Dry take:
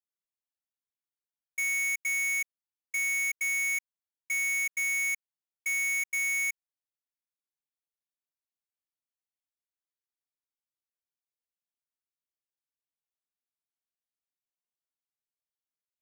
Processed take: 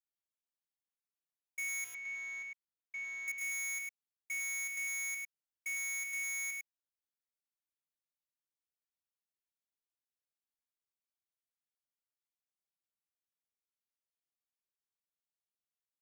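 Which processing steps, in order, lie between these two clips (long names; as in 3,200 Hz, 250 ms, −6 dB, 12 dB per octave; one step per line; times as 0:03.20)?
0:01.84–0:03.28: high-frequency loss of the air 210 metres
single-tap delay 103 ms −4 dB
level −8.5 dB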